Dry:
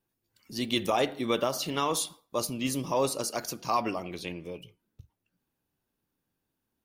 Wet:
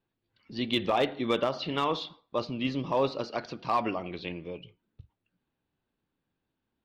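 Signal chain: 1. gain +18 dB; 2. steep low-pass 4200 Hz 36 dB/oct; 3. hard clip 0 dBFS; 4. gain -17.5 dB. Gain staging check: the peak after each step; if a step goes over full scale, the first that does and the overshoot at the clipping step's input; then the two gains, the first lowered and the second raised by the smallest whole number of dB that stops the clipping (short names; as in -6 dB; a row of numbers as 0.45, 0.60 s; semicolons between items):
+4.5, +4.0, 0.0, -17.5 dBFS; step 1, 4.0 dB; step 1 +14 dB, step 4 -13.5 dB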